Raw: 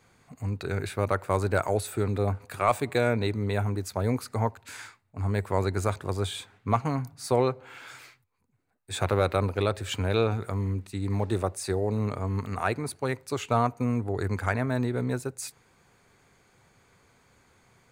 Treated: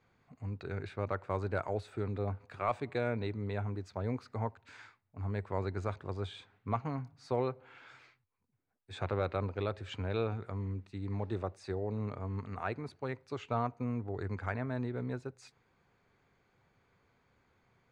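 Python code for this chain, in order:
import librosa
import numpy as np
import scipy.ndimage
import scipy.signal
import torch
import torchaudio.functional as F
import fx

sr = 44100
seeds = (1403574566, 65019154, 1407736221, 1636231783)

y = fx.air_absorb(x, sr, metres=160.0)
y = y * 10.0 ** (-8.5 / 20.0)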